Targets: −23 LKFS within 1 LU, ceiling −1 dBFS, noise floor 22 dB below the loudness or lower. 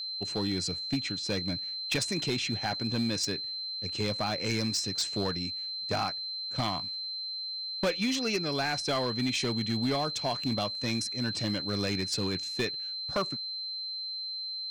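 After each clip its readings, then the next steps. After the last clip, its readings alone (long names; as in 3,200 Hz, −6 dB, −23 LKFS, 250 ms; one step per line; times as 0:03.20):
share of clipped samples 1.1%; peaks flattened at −23.0 dBFS; interfering tone 4,100 Hz; level of the tone −34 dBFS; integrated loudness −30.5 LKFS; sample peak −23.0 dBFS; target loudness −23.0 LKFS
→ clipped peaks rebuilt −23 dBFS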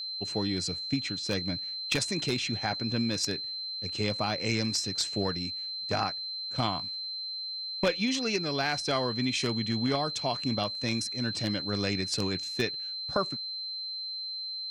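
share of clipped samples 0.0%; interfering tone 4,100 Hz; level of the tone −34 dBFS
→ notch filter 4,100 Hz, Q 30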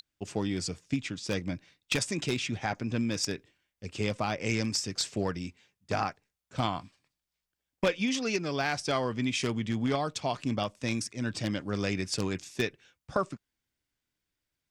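interfering tone none found; integrated loudness −32.0 LKFS; sample peak −13.5 dBFS; target loudness −23.0 LKFS
→ level +9 dB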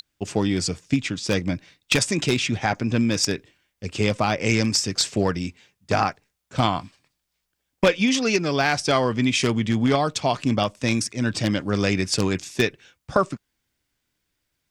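integrated loudness −23.0 LKFS; sample peak −4.5 dBFS; background noise floor −78 dBFS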